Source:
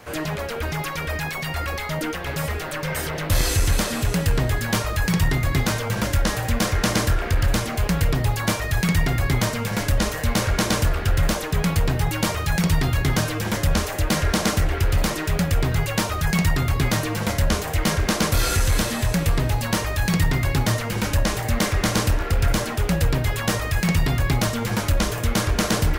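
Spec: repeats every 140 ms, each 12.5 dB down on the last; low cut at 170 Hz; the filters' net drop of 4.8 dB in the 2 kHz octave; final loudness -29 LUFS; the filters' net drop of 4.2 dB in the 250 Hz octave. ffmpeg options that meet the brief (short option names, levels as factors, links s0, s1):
-af "highpass=170,equalizer=f=250:t=o:g=-3.5,equalizer=f=2000:t=o:g=-6,aecho=1:1:140|280|420:0.237|0.0569|0.0137,volume=0.75"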